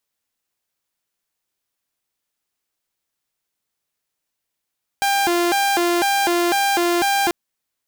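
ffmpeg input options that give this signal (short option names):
-f lavfi -i "aevalsrc='0.211*(2*mod((571.5*t+224.5/2*(0.5-abs(mod(2*t,1)-0.5))),1)-1)':d=2.29:s=44100"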